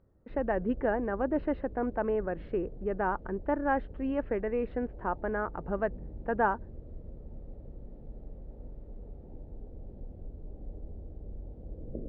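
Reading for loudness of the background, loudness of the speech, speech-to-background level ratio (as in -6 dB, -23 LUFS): -47.5 LUFS, -32.5 LUFS, 15.0 dB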